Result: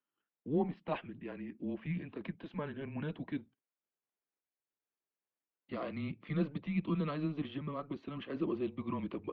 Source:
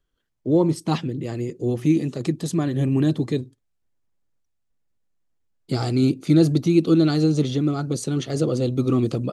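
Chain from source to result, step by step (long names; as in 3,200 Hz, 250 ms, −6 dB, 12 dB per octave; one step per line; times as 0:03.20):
single-sideband voice off tune −150 Hz 420–3,000 Hz
level −8 dB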